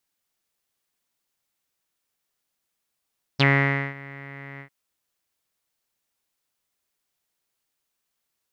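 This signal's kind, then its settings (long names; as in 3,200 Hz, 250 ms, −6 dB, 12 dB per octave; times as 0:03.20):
subtractive voice saw C#3 12 dB per octave, low-pass 2,000 Hz, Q 11, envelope 1.5 octaves, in 0.05 s, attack 17 ms, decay 0.53 s, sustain −23 dB, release 0.09 s, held 1.21 s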